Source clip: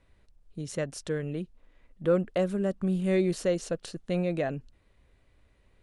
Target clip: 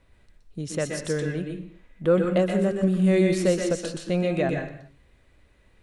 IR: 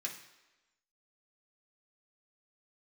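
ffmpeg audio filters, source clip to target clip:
-filter_complex "[0:a]asplit=2[link_01][link_02];[1:a]atrim=start_sample=2205,afade=type=out:start_time=0.33:duration=0.01,atrim=end_sample=14994,adelay=121[link_03];[link_02][link_03]afir=irnorm=-1:irlink=0,volume=-1.5dB[link_04];[link_01][link_04]amix=inputs=2:normalize=0,volume=4dB"

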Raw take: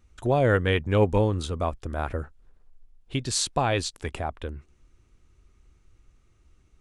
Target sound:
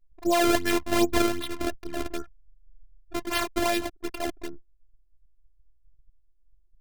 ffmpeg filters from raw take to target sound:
ffmpeg -i in.wav -af "acrusher=samples=28:mix=1:aa=0.000001:lfo=1:lforange=44.8:lforate=2.6,afftfilt=real='hypot(re,im)*cos(PI*b)':imag='0':win_size=512:overlap=0.75,anlmdn=0.01,volume=3.5dB" out.wav

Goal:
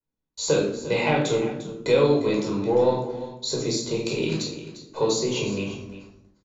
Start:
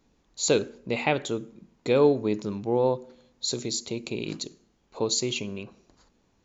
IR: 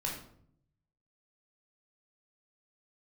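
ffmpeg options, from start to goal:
-filter_complex "[0:a]agate=range=-32dB:threshold=-58dB:ratio=16:detection=peak,adynamicequalizer=threshold=0.00708:dfrequency=5900:dqfactor=1.2:tfrequency=5900:tqfactor=1.2:attack=5:release=100:ratio=0.375:range=3:mode=boostabove:tftype=bell,acrossover=split=290|1700[link_01][link_02][link_03];[link_01]acompressor=threshold=-42dB:ratio=4[link_04];[link_02]acompressor=threshold=-26dB:ratio=4[link_05];[link_03]acompressor=threshold=-37dB:ratio=4[link_06];[link_04][link_05][link_06]amix=inputs=3:normalize=0,asplit=2[link_07][link_08];[link_08]asoftclip=type=tanh:threshold=-26dB,volume=-11dB[link_09];[link_07][link_09]amix=inputs=2:normalize=0,asplit=2[link_10][link_11];[link_11]adelay=20,volume=-13dB[link_12];[link_10][link_12]amix=inputs=2:normalize=0,aecho=1:1:350:0.2[link_13];[1:a]atrim=start_sample=2205[link_14];[link_13][link_14]afir=irnorm=-1:irlink=0,volume=3.5dB"

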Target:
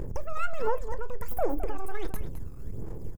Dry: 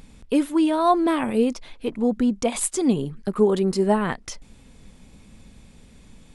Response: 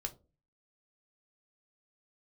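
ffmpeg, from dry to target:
-filter_complex "[0:a]aeval=exprs='if(lt(val(0),0),0.251*val(0),val(0))':channel_layout=same,equalizer=frequency=2100:width_type=o:width=1.2:gain=-13,acompressor=threshold=-34dB:ratio=6,lowshelf=frequency=220:gain=8,aphaser=in_gain=1:out_gain=1:delay=1.6:decay=0.66:speed=0.69:type=sinusoidal,aecho=1:1:75|425:0.112|0.266,asplit=2[link_01][link_02];[1:a]atrim=start_sample=2205,adelay=50[link_03];[link_02][link_03]afir=irnorm=-1:irlink=0,volume=-15.5dB[link_04];[link_01][link_04]amix=inputs=2:normalize=0,asetrate=88200,aresample=44100,volume=-2.5dB"

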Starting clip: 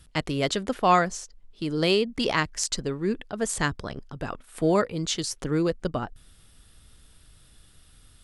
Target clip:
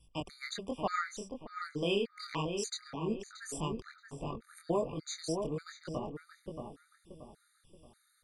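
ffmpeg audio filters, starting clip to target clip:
ffmpeg -i in.wav -filter_complex "[0:a]flanger=delay=19.5:depth=6.4:speed=1.2,asplit=2[link_01][link_02];[link_02]adelay=628,lowpass=frequency=1800:poles=1,volume=-5dB,asplit=2[link_03][link_04];[link_04]adelay=628,lowpass=frequency=1800:poles=1,volume=0.39,asplit=2[link_05][link_06];[link_06]adelay=628,lowpass=frequency=1800:poles=1,volume=0.39,asplit=2[link_07][link_08];[link_08]adelay=628,lowpass=frequency=1800:poles=1,volume=0.39,asplit=2[link_09][link_10];[link_10]adelay=628,lowpass=frequency=1800:poles=1,volume=0.39[link_11];[link_01][link_03][link_05][link_07][link_09][link_11]amix=inputs=6:normalize=0,afftfilt=real='re*gt(sin(2*PI*1.7*pts/sr)*(1-2*mod(floor(b*sr/1024/1200),2)),0)':imag='im*gt(sin(2*PI*1.7*pts/sr)*(1-2*mod(floor(b*sr/1024/1200),2)),0)':win_size=1024:overlap=0.75,volume=-6dB" out.wav

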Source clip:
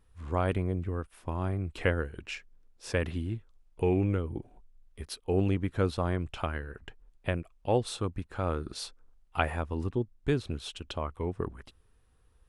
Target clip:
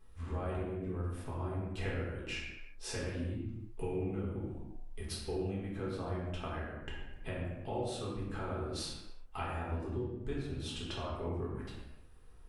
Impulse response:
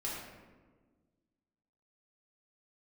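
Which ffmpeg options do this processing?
-filter_complex "[0:a]asplit=3[link_01][link_02][link_03];[link_01]afade=type=out:start_time=6.36:duration=0.02[link_04];[link_02]agate=range=-33dB:threshold=-32dB:ratio=3:detection=peak,afade=type=in:start_time=6.36:duration=0.02,afade=type=out:start_time=6.8:duration=0.02[link_05];[link_03]afade=type=in:start_time=6.8:duration=0.02[link_06];[link_04][link_05][link_06]amix=inputs=3:normalize=0,acompressor=threshold=-41dB:ratio=6[link_07];[1:a]atrim=start_sample=2205,afade=type=out:start_time=0.43:duration=0.01,atrim=end_sample=19404[link_08];[link_07][link_08]afir=irnorm=-1:irlink=0,volume=3.5dB"

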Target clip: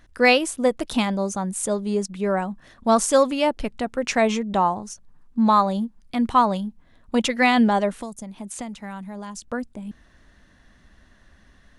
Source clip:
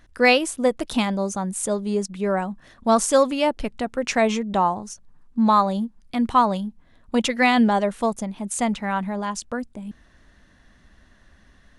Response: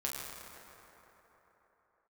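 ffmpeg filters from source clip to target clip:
-filter_complex "[0:a]asettb=1/sr,asplit=3[link_01][link_02][link_03];[link_01]atrim=end=7.924[link_04];[link_02]atrim=start=7.92:end=9.48,asetpts=PTS-STARTPTS,afade=type=in:duration=0.004:curve=qsin,afade=type=out:start_time=1.556:duration=0.004:curve=qsin,acrossover=split=270|5300[link_05][link_06][link_07];[link_05]acompressor=threshold=-37dB:ratio=4[link_08];[link_06]acompressor=threshold=-37dB:ratio=4[link_09];[link_07]acompressor=threshold=-38dB:ratio=4[link_10];[link_08][link_09][link_10]amix=inputs=3:normalize=0[link_11];[link_03]atrim=start=9.476[link_12];[link_04][link_11]acrossfade=duration=0.004:curve1=hsin:curve2=qsin[link_13];[link_13][link_12]acrossfade=duration=0.004:curve1=qsin:curve2=hsin"

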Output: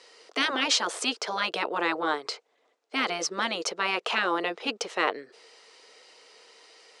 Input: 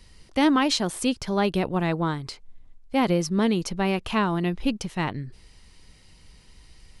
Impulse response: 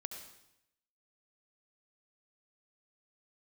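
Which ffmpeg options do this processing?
-af "highpass=frequency=410:width=0.5412,highpass=frequency=410:width=1.3066,equalizer=frequency=460:width_type=q:width=4:gain=10,equalizer=frequency=680:width_type=q:width=4:gain=5,equalizer=frequency=1300:width_type=q:width=4:gain=5,lowpass=frequency=7800:width=0.5412,lowpass=frequency=7800:width=1.3066,afftfilt=real='re*lt(hypot(re,im),0.251)':imag='im*lt(hypot(re,im),0.251)':win_size=1024:overlap=0.75,volume=4dB"

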